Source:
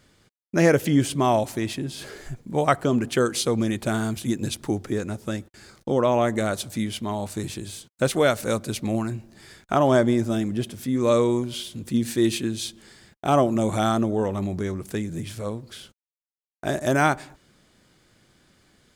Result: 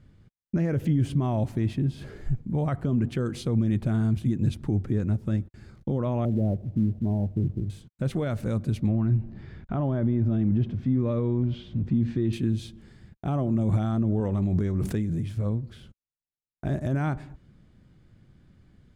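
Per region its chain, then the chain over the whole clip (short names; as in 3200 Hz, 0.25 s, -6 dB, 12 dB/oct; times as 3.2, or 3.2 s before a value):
6.25–7.7 steep low-pass 750 Hz + companded quantiser 6-bit
8.89–12.33 G.711 law mismatch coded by mu + de-esser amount 35% + air absorption 180 m
14.2–15.37 tone controls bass -5 dB, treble +3 dB + backwards sustainer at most 22 dB/s
whole clip: tone controls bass +10 dB, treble -10 dB; limiter -13.5 dBFS; low shelf 300 Hz +9 dB; gain -8.5 dB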